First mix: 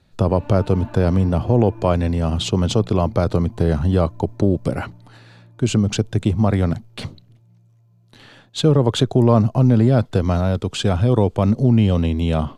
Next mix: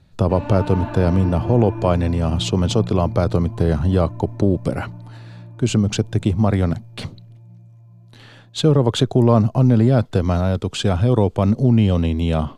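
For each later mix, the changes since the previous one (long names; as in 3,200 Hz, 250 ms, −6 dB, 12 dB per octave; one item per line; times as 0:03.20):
background +9.5 dB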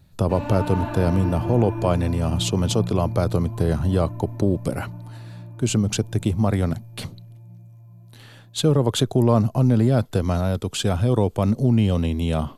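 speech −3.5 dB
master: remove high-frequency loss of the air 67 metres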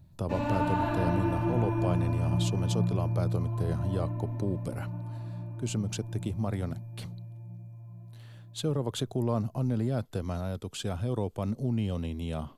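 speech −11.5 dB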